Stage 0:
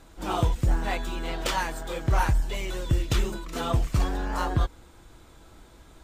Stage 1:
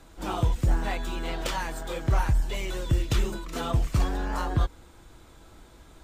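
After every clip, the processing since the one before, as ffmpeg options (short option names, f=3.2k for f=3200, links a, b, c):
-filter_complex "[0:a]acrossover=split=220[a][b];[b]acompressor=threshold=-28dB:ratio=5[c];[a][c]amix=inputs=2:normalize=0"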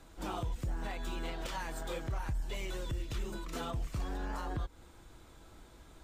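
-af "alimiter=limit=-24dB:level=0:latency=1:release=192,volume=-4.5dB"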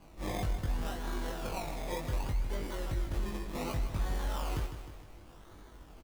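-filter_complex "[0:a]acrusher=samples=24:mix=1:aa=0.000001:lfo=1:lforange=14.4:lforate=0.67,asplit=2[a][b];[b]adelay=20,volume=-3dB[c];[a][c]amix=inputs=2:normalize=0,aecho=1:1:155|310|465|620|775|930:0.316|0.171|0.0922|0.0498|0.0269|0.0145"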